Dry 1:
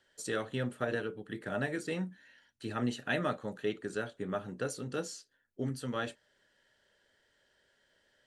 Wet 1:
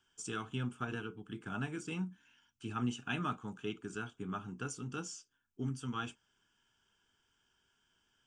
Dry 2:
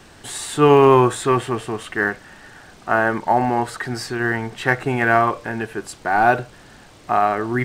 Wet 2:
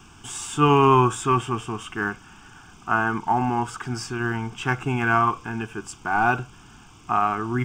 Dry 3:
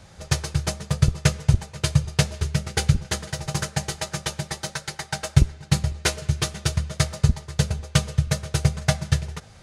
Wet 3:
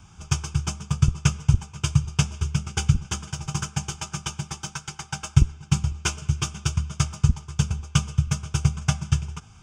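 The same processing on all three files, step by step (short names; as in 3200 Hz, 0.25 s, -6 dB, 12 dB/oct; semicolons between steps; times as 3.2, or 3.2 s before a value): fixed phaser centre 2800 Hz, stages 8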